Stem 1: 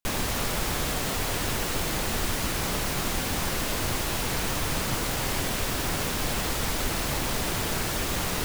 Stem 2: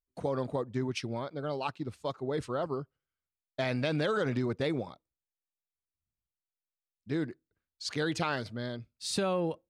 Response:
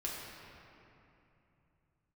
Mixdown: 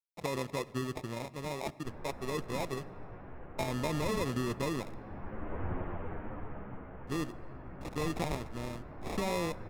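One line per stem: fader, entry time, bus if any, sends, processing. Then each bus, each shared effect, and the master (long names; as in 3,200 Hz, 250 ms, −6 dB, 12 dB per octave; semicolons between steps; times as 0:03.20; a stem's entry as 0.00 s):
−4.0 dB, 1.80 s, send −19.5 dB, multi-voice chorus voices 2, 0.25 Hz, delay 13 ms, depth 3.4 ms; Gaussian smoothing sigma 5.6 samples; automatic ducking −12 dB, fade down 1.25 s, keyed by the second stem
−3.0 dB, 0.00 s, send −17.5 dB, decimation without filtering 29×; dead-zone distortion −49.5 dBFS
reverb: on, RT60 2.9 s, pre-delay 5 ms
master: linearly interpolated sample-rate reduction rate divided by 2×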